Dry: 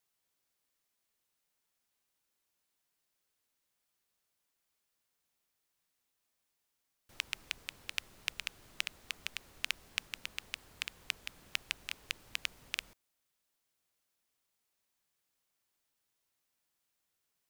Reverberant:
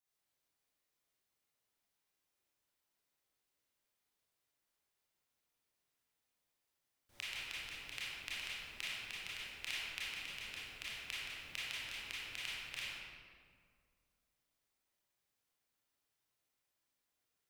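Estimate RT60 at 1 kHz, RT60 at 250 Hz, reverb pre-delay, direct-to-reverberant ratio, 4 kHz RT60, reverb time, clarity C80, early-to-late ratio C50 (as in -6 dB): 1.9 s, 2.3 s, 24 ms, -9.5 dB, 1.2 s, 2.0 s, -1.5 dB, -4.5 dB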